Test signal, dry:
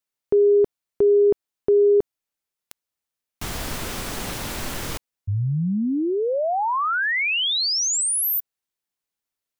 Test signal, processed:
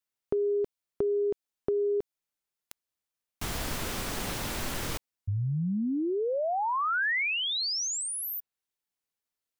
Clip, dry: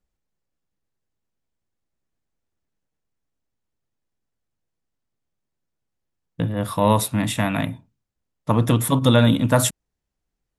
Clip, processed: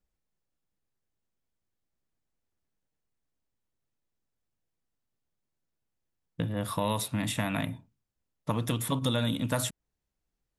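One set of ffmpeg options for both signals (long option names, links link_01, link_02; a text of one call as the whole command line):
ffmpeg -i in.wav -filter_complex "[0:a]acrossover=split=2200|4700[link_01][link_02][link_03];[link_01]acompressor=threshold=-24dB:ratio=4[link_04];[link_02]acompressor=threshold=-34dB:ratio=4[link_05];[link_03]acompressor=threshold=-32dB:ratio=4[link_06];[link_04][link_05][link_06]amix=inputs=3:normalize=0,volume=-3.5dB" out.wav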